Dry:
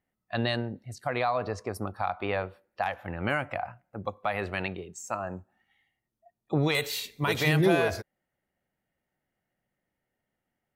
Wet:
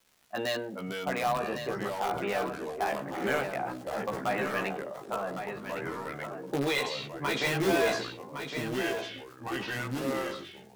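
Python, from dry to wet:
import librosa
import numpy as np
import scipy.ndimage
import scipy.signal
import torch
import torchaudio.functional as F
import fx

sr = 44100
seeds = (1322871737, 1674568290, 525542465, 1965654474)

p1 = scipy.signal.sosfilt(scipy.signal.butter(4, 190.0, 'highpass', fs=sr, output='sos'), x)
p2 = fx.env_lowpass(p1, sr, base_hz=490.0, full_db=-24.0)
p3 = scipy.signal.sosfilt(scipy.signal.butter(2, 6600.0, 'lowpass', fs=sr, output='sos'), p2)
p4 = fx.comb_fb(p3, sr, f0_hz=560.0, decay_s=0.56, harmonics='all', damping=0.0, mix_pct=40)
p5 = fx.dmg_crackle(p4, sr, seeds[0], per_s=300.0, level_db=-53.0)
p6 = (np.mod(10.0 ** (24.0 / 20.0) * p5 + 1.0, 2.0) - 1.0) / 10.0 ** (24.0 / 20.0)
p7 = p5 + (p6 * 10.0 ** (-8.0 / 20.0))
p8 = p7 + 10.0 ** (-8.0 / 20.0) * np.pad(p7, (int(1110 * sr / 1000.0), 0))[:len(p7)]
p9 = fx.echo_pitch(p8, sr, ms=336, semitones=-4, count=3, db_per_echo=-6.0)
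p10 = fx.doubler(p9, sr, ms=15.0, db=-2.5)
p11 = fx.sustainer(p10, sr, db_per_s=67.0)
y = p11 * 10.0 ** (-1.5 / 20.0)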